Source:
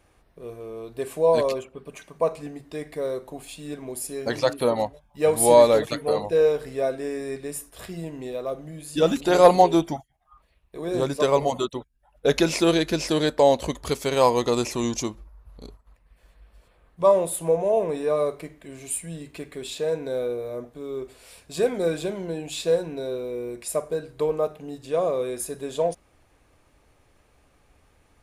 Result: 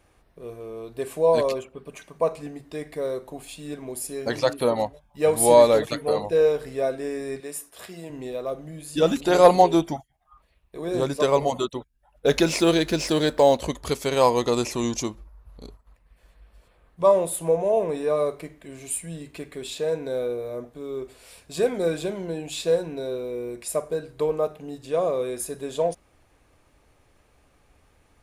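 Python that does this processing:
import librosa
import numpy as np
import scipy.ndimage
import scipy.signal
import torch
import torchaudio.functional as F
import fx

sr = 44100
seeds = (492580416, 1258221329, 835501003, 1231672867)

y = fx.highpass(x, sr, hz=400.0, slope=6, at=(7.4, 8.1))
y = fx.law_mismatch(y, sr, coded='mu', at=(12.26, 13.57))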